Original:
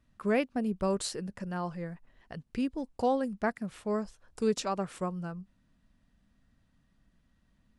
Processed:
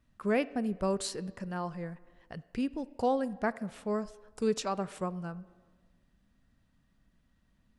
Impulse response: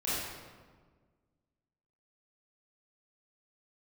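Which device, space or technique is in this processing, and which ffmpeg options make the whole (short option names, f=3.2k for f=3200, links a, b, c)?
filtered reverb send: -filter_complex "[0:a]asplit=2[a][b];[b]highpass=270,lowpass=4.2k[c];[1:a]atrim=start_sample=2205[d];[c][d]afir=irnorm=-1:irlink=0,volume=-24dB[e];[a][e]amix=inputs=2:normalize=0,volume=-1dB"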